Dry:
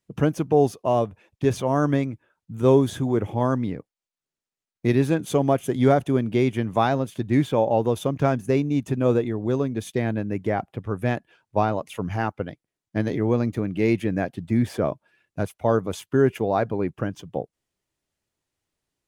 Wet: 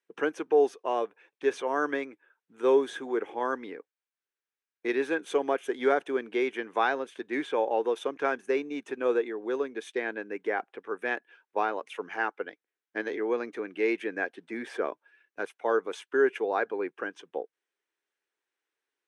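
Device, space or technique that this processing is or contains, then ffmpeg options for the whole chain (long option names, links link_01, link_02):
phone speaker on a table: -af "highpass=frequency=360:width=0.5412,highpass=frequency=360:width=1.3066,equalizer=frequency=440:width_type=q:width=4:gain=3,equalizer=frequency=620:width_type=q:width=4:gain=-8,equalizer=frequency=1600:width_type=q:width=4:gain=8,equalizer=frequency=2300:width_type=q:width=4:gain=3,equalizer=frequency=4700:width_type=q:width=4:gain=-7,equalizer=frequency=7000:width_type=q:width=4:gain=-8,lowpass=frequency=8300:width=0.5412,lowpass=frequency=8300:width=1.3066,volume=-3.5dB"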